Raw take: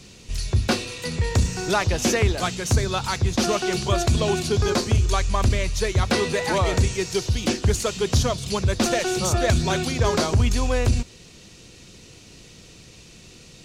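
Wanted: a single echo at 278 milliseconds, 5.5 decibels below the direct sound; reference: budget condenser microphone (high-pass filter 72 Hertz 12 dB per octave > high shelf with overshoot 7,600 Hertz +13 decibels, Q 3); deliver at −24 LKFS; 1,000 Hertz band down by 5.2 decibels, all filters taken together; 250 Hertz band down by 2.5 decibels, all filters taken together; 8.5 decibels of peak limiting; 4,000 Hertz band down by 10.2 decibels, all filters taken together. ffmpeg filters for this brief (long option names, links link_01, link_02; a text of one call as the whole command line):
ffmpeg -i in.wav -af "equalizer=frequency=250:width_type=o:gain=-3,equalizer=frequency=1000:width_type=o:gain=-6.5,equalizer=frequency=4000:width_type=o:gain=-7.5,alimiter=limit=-17.5dB:level=0:latency=1,highpass=72,highshelf=frequency=7600:width_type=q:width=3:gain=13,aecho=1:1:278:0.531" out.wav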